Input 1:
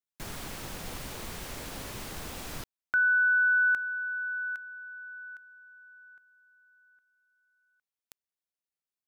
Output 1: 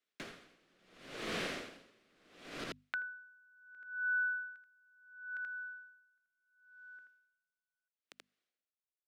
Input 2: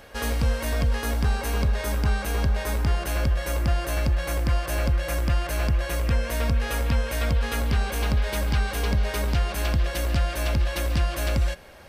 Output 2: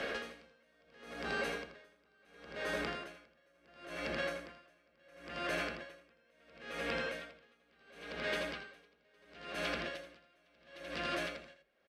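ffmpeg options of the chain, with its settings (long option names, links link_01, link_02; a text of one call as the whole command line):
ffmpeg -i in.wav -filter_complex "[0:a]equalizer=frequency=900:width=2.8:gain=-11.5,acrossover=split=360[link_01][link_02];[link_01]volume=32dB,asoftclip=hard,volume=-32dB[link_03];[link_03][link_02]amix=inputs=2:normalize=0,acrossover=split=190 4100:gain=0.0891 1 0.2[link_04][link_05][link_06];[link_04][link_05][link_06]amix=inputs=3:normalize=0,bandreject=frequency=50:width_type=h:width=6,bandreject=frequency=100:width_type=h:width=6,bandreject=frequency=150:width_type=h:width=6,bandreject=frequency=200:width_type=h:width=6,bandreject=frequency=250:width_type=h:width=6,aecho=1:1:81:0.631,acompressor=threshold=-43dB:ratio=8:attack=2.1:release=599:knee=1:detection=peak,lowpass=9400,aeval=exprs='val(0)*pow(10,-35*(0.5-0.5*cos(2*PI*0.72*n/s))/20)':channel_layout=same,volume=12.5dB" out.wav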